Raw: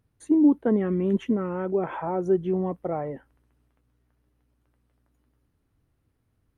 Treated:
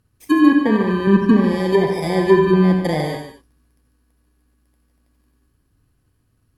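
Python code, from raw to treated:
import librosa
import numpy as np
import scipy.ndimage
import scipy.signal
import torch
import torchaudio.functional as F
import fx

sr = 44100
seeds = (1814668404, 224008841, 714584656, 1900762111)

y = fx.bit_reversed(x, sr, seeds[0], block=32)
y = fx.env_lowpass_down(y, sr, base_hz=1800.0, full_db=-20.0)
y = fx.low_shelf(y, sr, hz=460.0, db=8.0, at=(1.07, 3.07))
y = y + 10.0 ** (-8.5 / 20.0) * np.pad(y, (int(146 * sr / 1000.0), 0))[:len(y)]
y = fx.rev_gated(y, sr, seeds[1], gate_ms=110, shape='rising', drr_db=5.0)
y = y * 10.0 ** (5.5 / 20.0)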